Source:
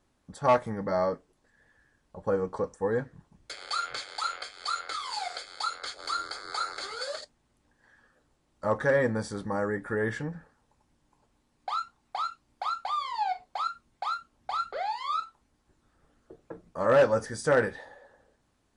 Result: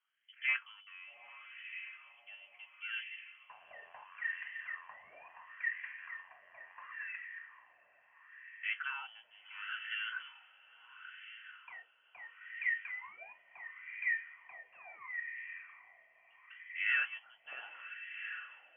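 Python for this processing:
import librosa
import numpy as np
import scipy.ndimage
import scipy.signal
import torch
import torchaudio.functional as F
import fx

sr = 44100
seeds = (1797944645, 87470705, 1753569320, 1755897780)

y = fx.freq_invert(x, sr, carrier_hz=3200)
y = fx.echo_diffused(y, sr, ms=795, feedback_pct=62, wet_db=-10)
y = fx.wah_lfo(y, sr, hz=0.73, low_hz=620.0, high_hz=2000.0, q=4.5)
y = y * librosa.db_to_amplitude(-1.5)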